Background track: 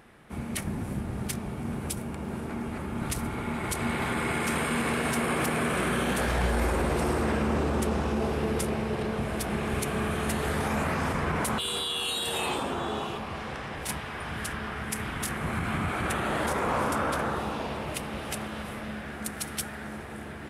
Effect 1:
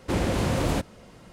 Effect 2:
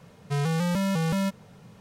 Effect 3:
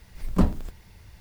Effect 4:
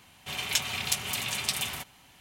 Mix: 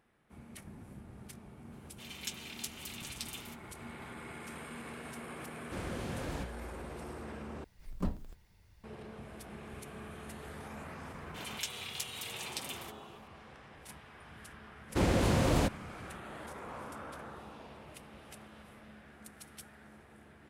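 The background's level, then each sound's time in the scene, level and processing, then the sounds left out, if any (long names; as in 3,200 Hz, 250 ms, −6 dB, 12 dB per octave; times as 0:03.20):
background track −17.5 dB
0:01.72: mix in 4 −17 dB + tilt shelving filter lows −4.5 dB, about 1,300 Hz
0:05.63: mix in 1 −15.5 dB
0:07.64: overwrite with 3 −14 dB
0:11.08: mix in 4 −11.5 dB
0:14.87: mix in 1 −3 dB, fades 0.05 s
not used: 2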